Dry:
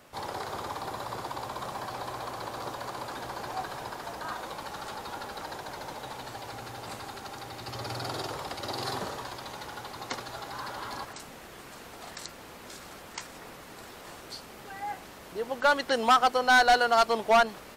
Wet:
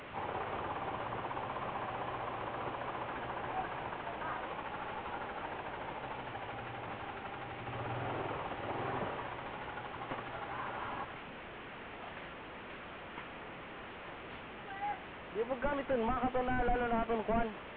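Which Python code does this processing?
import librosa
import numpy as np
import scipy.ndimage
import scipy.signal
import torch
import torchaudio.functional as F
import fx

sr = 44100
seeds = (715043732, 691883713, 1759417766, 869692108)

y = fx.delta_mod(x, sr, bps=16000, step_db=-39.0)
y = y * 10.0 ** (-2.5 / 20.0)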